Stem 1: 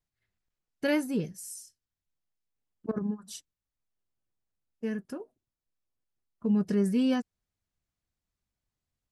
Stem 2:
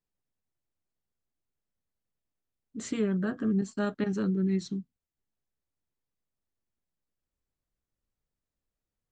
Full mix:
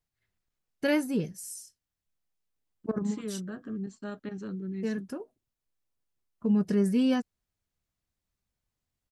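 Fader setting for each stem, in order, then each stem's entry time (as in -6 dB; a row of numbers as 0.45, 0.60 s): +1.0, -8.5 dB; 0.00, 0.25 s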